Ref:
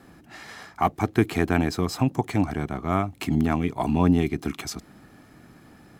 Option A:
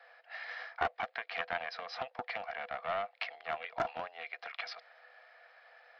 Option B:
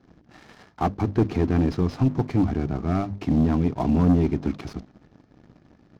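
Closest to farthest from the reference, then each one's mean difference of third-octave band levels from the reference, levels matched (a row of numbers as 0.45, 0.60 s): B, A; 6.0, 13.5 dB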